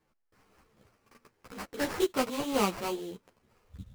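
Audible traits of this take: aliases and images of a low sample rate 3.6 kHz, jitter 20%; a shimmering, thickened sound

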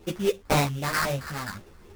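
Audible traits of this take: a quantiser's noise floor 10-bit, dither none; phasing stages 4, 3.8 Hz, lowest notch 510–3900 Hz; aliases and images of a low sample rate 3.1 kHz, jitter 20%; a shimmering, thickened sound

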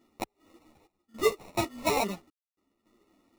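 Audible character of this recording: random-step tremolo 3.5 Hz, depth 100%; aliases and images of a low sample rate 1.6 kHz, jitter 0%; a shimmering, thickened sound

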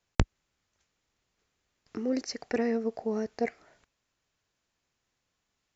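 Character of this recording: noise floor -82 dBFS; spectral tilt -6.0 dB/octave

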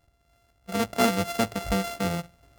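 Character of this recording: a buzz of ramps at a fixed pitch in blocks of 64 samples; AAC

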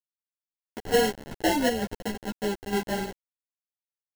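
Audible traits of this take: aliases and images of a low sample rate 1.2 kHz, jitter 0%; chopped level 2.2 Hz, depth 60%, duty 70%; a quantiser's noise floor 6-bit, dither none; a shimmering, thickened sound

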